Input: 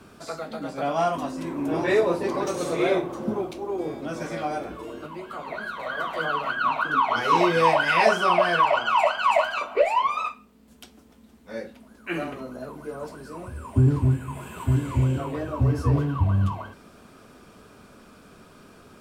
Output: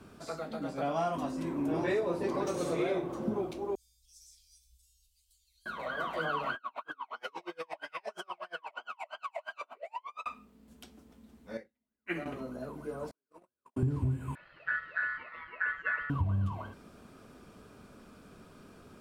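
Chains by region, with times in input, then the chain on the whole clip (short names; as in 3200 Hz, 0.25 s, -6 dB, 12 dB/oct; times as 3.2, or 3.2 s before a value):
3.75–5.66 inverse Chebyshev band-stop 210–1100 Hz, stop band 80 dB + bell 1600 Hz -5.5 dB 1.2 oct
6.55–10.26 HPF 410 Hz + compressor 12:1, threshold -25 dBFS + dB-linear tremolo 8.5 Hz, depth 37 dB
11.57–12.26 bell 2000 Hz +14 dB 0.21 oct + upward expander 2.5:1, over -48 dBFS
13.11–13.83 HPF 320 Hz + gate -37 dBFS, range -46 dB
14.35–16.1 air absorption 420 m + ring modulator 1600 Hz + upward expander, over -38 dBFS
whole clip: low shelf 490 Hz +4.5 dB; compressor, threshold -20 dBFS; gain -7 dB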